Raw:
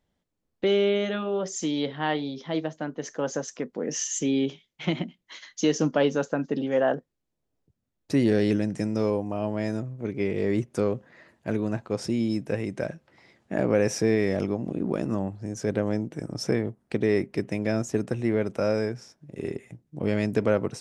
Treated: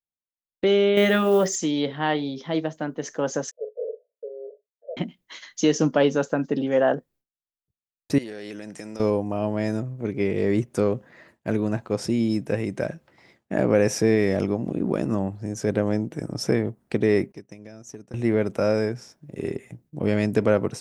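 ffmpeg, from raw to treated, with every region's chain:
-filter_complex "[0:a]asettb=1/sr,asplit=3[s0][s1][s2];[s0]atrim=end=0.974[s3];[s1]atrim=start=0.97:end=1.56,asetpts=PTS-STARTPTS,afade=t=in:d=0.004:c=qsin,afade=t=out:st=0.586:d=0.004:c=qsin,equalizer=f=1900:t=o:w=0.27:g=7.5,acontrast=45,acrusher=bits=8:mode=log:mix=0:aa=0.000001[s4];[s2]atrim=start=1.556[s5];[s3][s4]acrossfade=d=0.004:c1=hsin:c2=qsin[s6];[s6][s5]acrossfade=d=0.004:c1=qsin:c2=hsin,asettb=1/sr,asplit=3[s7][s8][s9];[s7]atrim=end=3.514[s10];[s8]atrim=start=3.51:end=4.97,asetpts=PTS-STARTPTS,afade=t=in:d=0.004:c=qsin,afade=t=out:st=1.456:d=0.004:c=qsin,asuperpass=centerf=530:order=20:qfactor=2.1,asplit=2[s11][s12];[s12]adelay=40,volume=0.316[s13];[s11][s13]amix=inputs=2:normalize=0,atrim=end_sample=64386[s14];[s9]atrim=start=4.966[s15];[s10][s14]acrossfade=d=0.004:c1=hsin:c2=qsin[s16];[s16][s15]acrossfade=d=0.004:c1=qsin:c2=hsin,asettb=1/sr,asplit=3[s17][s18][s19];[s17]atrim=end=8.184[s20];[s18]atrim=start=8.18:end=9,asetpts=PTS-STARTPTS,afade=t=in:d=0.004:c=qsin,afade=t=out:st=0.816:d=0.004:c=qsin,highpass=f=830:p=1,acompressor=threshold=0.02:ratio=12:attack=3.2:release=140:knee=1:detection=peak[s21];[s19]atrim=start=8.996[s22];[s20][s21]acrossfade=d=0.004:c1=hsin:c2=qsin[s23];[s23][s22]acrossfade=d=0.004:c1=qsin:c2=hsin,asettb=1/sr,asplit=3[s24][s25][s26];[s24]atrim=end=17.324[s27];[s25]atrim=start=17.32:end=18.14,asetpts=PTS-STARTPTS,afade=t=in:d=0.004:c=qsin,afade=t=out:st=0.816:d=0.004:c=qsin,equalizer=f=5900:w=5.4:g=13,acompressor=threshold=0.02:ratio=8:attack=3.2:release=140:knee=1:detection=peak,agate=range=0.0224:threshold=0.02:ratio=3:release=100:detection=peak[s28];[s26]atrim=start=18.136[s29];[s27][s28]acrossfade=d=0.004:c1=hsin:c2=qsin[s30];[s30][s29]acrossfade=d=0.004:c1=qsin:c2=hsin,aemphasis=mode=production:type=50fm,agate=range=0.0224:threshold=0.00224:ratio=3:detection=peak,highshelf=f=4300:g=-11,volume=1.5"

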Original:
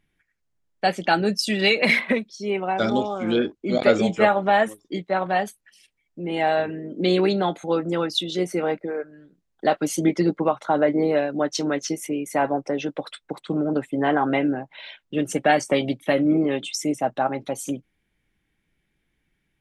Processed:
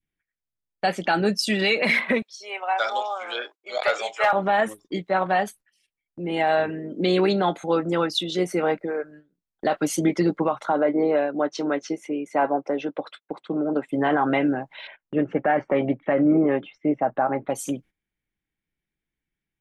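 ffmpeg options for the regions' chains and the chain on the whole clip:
-filter_complex "[0:a]asettb=1/sr,asplit=3[s0][s1][s2];[s0]atrim=end=2.224[s3];[s1]atrim=start=2.22:end=4.33,asetpts=PTS-STARTPTS,afade=t=in:d=0.004:c=qsin,afade=t=out:st=2.106:d=0.004:c=qsin,highpass=f=640:w=0.5412,highpass=f=640:w=1.3066,asoftclip=type=hard:threshold=0.251[s4];[s2]atrim=start=4.326[s5];[s3][s4]acrossfade=d=0.004:c1=hsin:c2=qsin[s6];[s6][s5]acrossfade=d=0.004:c1=qsin:c2=hsin,asettb=1/sr,asplit=3[s7][s8][s9];[s7]atrim=end=10.724[s10];[s8]atrim=start=10.72:end=13.89,asetpts=PTS-STARTPTS,afade=t=in:d=0.004:c=qsin,afade=t=out:st=3.166:d=0.004:c=qsin,highpass=230,lowpass=6500,highshelf=f=2700:g=-10,bandreject=f=1800:w=19[s11];[s9]atrim=start=13.886[s12];[s10][s11]acrossfade=d=0.004:c1=hsin:c2=qsin[s13];[s13][s12]acrossfade=d=0.004:c1=qsin:c2=hsin,asettb=1/sr,asplit=3[s14][s15][s16];[s14]atrim=end=14.874[s17];[s15]atrim=start=14.87:end=17.5,asetpts=PTS-STARTPTS,afade=t=in:d=0.004:c=qsin,afade=t=out:st=2.626:d=0.004:c=qsin,lowpass=f=2100:w=0.5412,lowpass=f=2100:w=1.3066,equalizer=f=590:t=o:w=2.1:g=2.5[s18];[s16]atrim=start=17.496[s19];[s17][s18]acrossfade=d=0.004:c1=hsin:c2=qsin[s20];[s20][s19]acrossfade=d=0.004:c1=qsin:c2=hsin,agate=range=0.2:threshold=0.00562:ratio=16:detection=peak,adynamicequalizer=threshold=0.0282:dfrequency=1200:dqfactor=0.79:tfrequency=1200:tqfactor=0.79:attack=5:release=100:ratio=0.375:range=2:mode=boostabove:tftype=bell,alimiter=limit=0.266:level=0:latency=1:release=36"

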